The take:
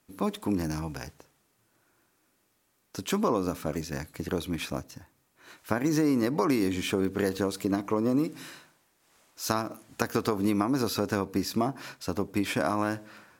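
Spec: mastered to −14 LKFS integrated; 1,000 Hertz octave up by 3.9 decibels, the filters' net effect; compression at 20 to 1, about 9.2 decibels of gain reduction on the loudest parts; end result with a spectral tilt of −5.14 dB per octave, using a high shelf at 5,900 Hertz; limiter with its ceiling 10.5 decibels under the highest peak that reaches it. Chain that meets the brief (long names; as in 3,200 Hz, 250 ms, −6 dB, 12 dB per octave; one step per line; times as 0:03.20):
parametric band 1,000 Hz +5 dB
high-shelf EQ 5,900 Hz −7.5 dB
downward compressor 20 to 1, threshold −29 dBFS
level +23 dB
brickwall limiter 0 dBFS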